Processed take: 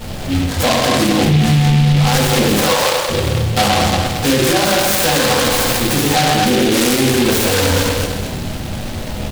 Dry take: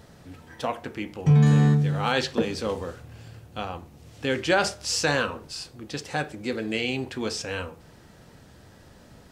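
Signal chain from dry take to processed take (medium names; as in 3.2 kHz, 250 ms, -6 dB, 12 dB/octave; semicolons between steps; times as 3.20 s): backward echo that repeats 113 ms, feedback 63%, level -7 dB; 2.56–3.09 s: high-pass 610 Hz 24 dB/octave; compression, threshold -28 dBFS, peak gain reduction 15 dB; delay 125 ms -9.5 dB; simulated room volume 330 m³, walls furnished, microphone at 6.4 m; loudness maximiser +17 dB; delay time shaken by noise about 2.7 kHz, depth 0.13 ms; trim -4.5 dB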